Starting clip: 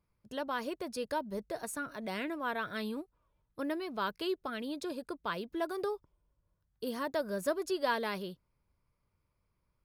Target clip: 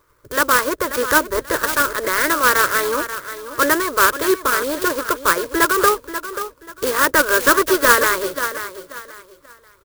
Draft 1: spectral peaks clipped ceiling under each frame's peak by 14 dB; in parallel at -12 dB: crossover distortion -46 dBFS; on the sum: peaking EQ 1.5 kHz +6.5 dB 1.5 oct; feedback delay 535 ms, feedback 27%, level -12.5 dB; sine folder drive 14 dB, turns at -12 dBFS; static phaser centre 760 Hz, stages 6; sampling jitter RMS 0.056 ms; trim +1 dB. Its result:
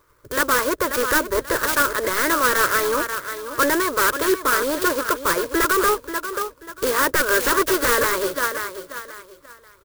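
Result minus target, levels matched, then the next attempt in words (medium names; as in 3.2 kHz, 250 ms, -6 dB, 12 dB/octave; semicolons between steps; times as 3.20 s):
sine folder: distortion +12 dB; crossover distortion: distortion -10 dB
spectral peaks clipped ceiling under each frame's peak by 14 dB; in parallel at -12 dB: crossover distortion -35.5 dBFS; on the sum: peaking EQ 1.5 kHz +6.5 dB 1.5 oct; feedback delay 535 ms, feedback 27%, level -12.5 dB; sine folder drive 14 dB, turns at -4.5 dBFS; static phaser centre 760 Hz, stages 6; sampling jitter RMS 0.056 ms; trim +1 dB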